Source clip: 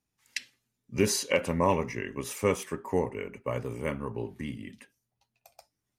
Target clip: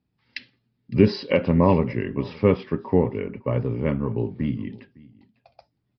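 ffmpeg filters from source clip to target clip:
-filter_complex "[0:a]equalizer=f=150:w=0.33:g=12.5,asplit=2[a][b];[b]aecho=0:1:558:0.0708[c];[a][c]amix=inputs=2:normalize=0,aresample=11025,aresample=44100"

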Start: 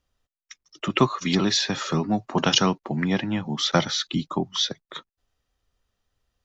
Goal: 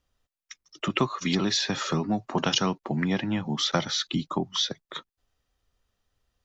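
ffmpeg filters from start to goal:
-af "acompressor=threshold=-24dB:ratio=2"

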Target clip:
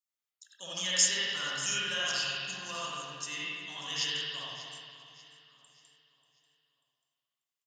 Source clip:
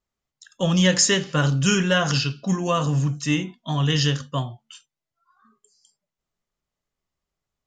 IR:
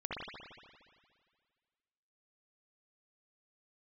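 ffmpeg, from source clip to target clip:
-filter_complex "[0:a]aderivative,aecho=1:1:589|1178|1767|2356:0.158|0.0634|0.0254|0.0101[a];[1:a]atrim=start_sample=2205[b];[a][b]afir=irnorm=-1:irlink=0"

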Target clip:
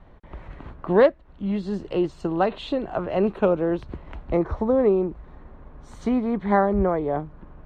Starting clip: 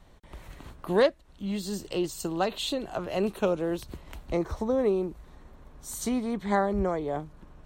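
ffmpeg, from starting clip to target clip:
-af "lowpass=1.9k,volume=6dB"

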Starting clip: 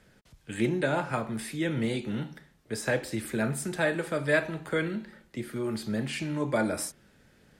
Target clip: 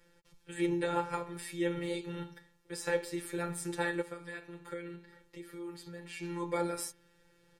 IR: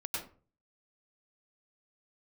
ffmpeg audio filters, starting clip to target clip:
-filter_complex "[0:a]asplit=3[a][b][c];[a]afade=t=out:st=4.01:d=0.02[d];[b]acompressor=threshold=-39dB:ratio=2.5,afade=t=in:st=4.01:d=0.02,afade=t=out:st=6.22:d=0.02[e];[c]afade=t=in:st=6.22:d=0.02[f];[d][e][f]amix=inputs=3:normalize=0,afftfilt=real='hypot(re,im)*cos(PI*b)':imag='0':win_size=1024:overlap=0.75,aecho=1:1:2.2:0.69,volume=-3dB"

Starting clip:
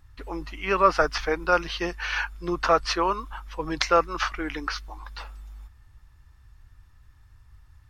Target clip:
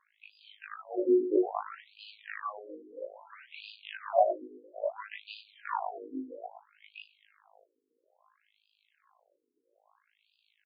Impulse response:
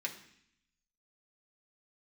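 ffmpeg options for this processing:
-filter_complex "[0:a]equalizer=f=80:t=o:w=1.1:g=-8,bandreject=f=530:w=17,acrossover=split=250|2000[a][b][c];[c]acompressor=threshold=-48dB:ratio=16[d];[a][b][d]amix=inputs=3:normalize=0,alimiter=limit=-12.5dB:level=0:latency=1:release=369,asplit=2[e][f];[f]acrusher=bits=3:mix=0:aa=0.5,volume=-11.5dB[g];[e][g]amix=inputs=2:normalize=0,afftfilt=real='hypot(re,im)*cos(PI*b)':imag='0':win_size=2048:overlap=0.75,asplit=2[h][i];[i]adelay=91,lowpass=f=960:p=1,volume=-12dB,asplit=2[j][k];[k]adelay=91,lowpass=f=960:p=1,volume=0.5,asplit=2[l][m];[m]adelay=91,lowpass=f=960:p=1,volume=0.5,asplit=2[n][o];[o]adelay=91,lowpass=f=960:p=1,volume=0.5,asplit=2[p][q];[q]adelay=91,lowpass=f=960:p=1,volume=0.5[r];[h][j][l][n][p][r]amix=inputs=6:normalize=0,asetrate=36028,aresample=44100,atempo=1.22405,asoftclip=type=tanh:threshold=-18dB,acrusher=bits=6:mode=log:mix=0:aa=0.000001,asetrate=32667,aresample=44100,afftfilt=real='re*between(b*sr/1024,330*pow(3500/330,0.5+0.5*sin(2*PI*0.6*pts/sr))/1.41,330*pow(3500/330,0.5+0.5*sin(2*PI*0.6*pts/sr))*1.41)':imag='im*between(b*sr/1024,330*pow(3500/330,0.5+0.5*sin(2*PI*0.6*pts/sr))/1.41,330*pow(3500/330,0.5+0.5*sin(2*PI*0.6*pts/sr))*1.41)':win_size=1024:overlap=0.75,volume=8dB"

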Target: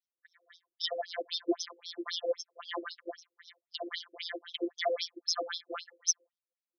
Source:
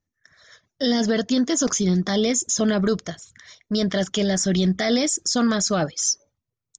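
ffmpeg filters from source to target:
-af "afftfilt=real='hypot(re,im)*cos(PI*b)':imag='0':win_size=1024:overlap=0.75,afftfilt=real='re*between(b*sr/1024,390*pow(4600/390,0.5+0.5*sin(2*PI*3.8*pts/sr))/1.41,390*pow(4600/390,0.5+0.5*sin(2*PI*3.8*pts/sr))*1.41)':imag='im*between(b*sr/1024,390*pow(4600/390,0.5+0.5*sin(2*PI*3.8*pts/sr))/1.41,390*pow(4600/390,0.5+0.5*sin(2*PI*3.8*pts/sr))*1.41)':win_size=1024:overlap=0.75"

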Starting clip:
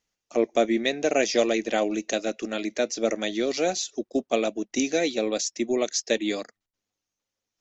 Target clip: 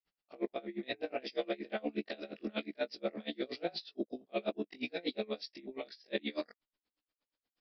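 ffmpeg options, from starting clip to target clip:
-af "afftfilt=real='re':imag='-im':win_size=2048:overlap=0.75,lowshelf=f=71:g=-5,areverse,acompressor=threshold=-35dB:ratio=6,areverse,aresample=11025,aresample=44100,aeval=exprs='val(0)*pow(10,-28*(0.5-0.5*cos(2*PI*8.4*n/s))/20)':c=same,volume=6dB"

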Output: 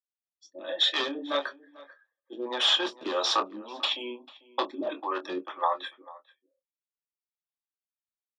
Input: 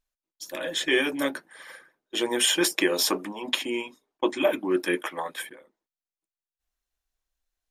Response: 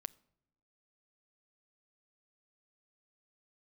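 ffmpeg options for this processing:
-filter_complex "[0:a]afftdn=nr=21:nf=-43,lowshelf=f=490:g=-5.5,aeval=exprs='0.1*(abs(mod(val(0)/0.1+3,4)-2)-1)':c=same,acrossover=split=400[a][b];[a]aeval=exprs='val(0)*(1-1/2+1/2*cos(2*PI*1.8*n/s))':c=same[c];[b]aeval=exprs='val(0)*(1-1/2-1/2*cos(2*PI*1.8*n/s))':c=same[d];[c][d]amix=inputs=2:normalize=0,asetrate=49501,aresample=44100,atempo=0.890899,asplit=2[e][f];[f]adelay=23,volume=-10.5dB[g];[e][g]amix=inputs=2:normalize=0,asplit=2[h][i];[i]adelay=408.2,volume=-20dB,highshelf=f=4k:g=-9.18[j];[h][j]amix=inputs=2:normalize=0,asetrate=40517,aresample=44100,highpass=f=230:w=0.5412,highpass=f=230:w=1.3066,equalizer=f=400:t=q:w=4:g=-3,equalizer=f=570:t=q:w=4:g=6,equalizer=f=820:t=q:w=4:g=7,equalizer=f=1.2k:t=q:w=4:g=9,equalizer=f=2.1k:t=q:w=4:g=-8,equalizer=f=3.6k:t=q:w=4:g=7,lowpass=f=4.9k:w=0.5412,lowpass=f=4.9k:w=1.3066,volume=2dB"

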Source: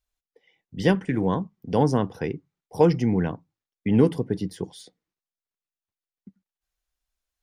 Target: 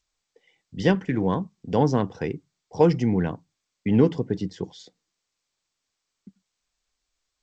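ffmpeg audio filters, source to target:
-ar 16000 -c:a g722

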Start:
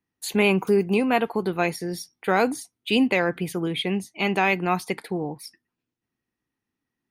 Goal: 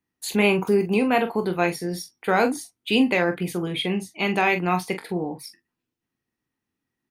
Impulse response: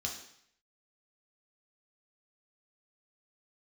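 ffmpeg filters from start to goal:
-af "aecho=1:1:23|44:0.316|0.316"

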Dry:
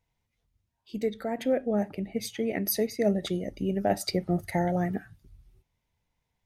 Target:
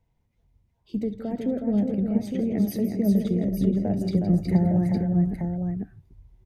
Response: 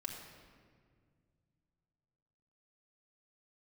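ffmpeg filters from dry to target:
-filter_complex "[0:a]tiltshelf=f=970:g=7,acrossover=split=240[a][b];[b]acompressor=threshold=-39dB:ratio=3[c];[a][c]amix=inputs=2:normalize=0,aecho=1:1:67|165|366|479|859:0.126|0.237|0.562|0.211|0.501,volume=2.5dB"

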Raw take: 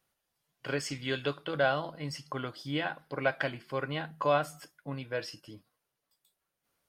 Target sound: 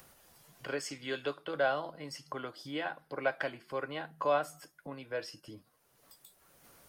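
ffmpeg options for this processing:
-filter_complex "[0:a]acrossover=split=270|620|4100[a][b][c][d];[a]acompressor=threshold=-52dB:ratio=6[e];[c]aemphasis=mode=reproduction:type=75kf[f];[e][b][f][d]amix=inputs=4:normalize=0,acompressor=mode=upward:threshold=-40dB:ratio=2.5,volume=-1.5dB"

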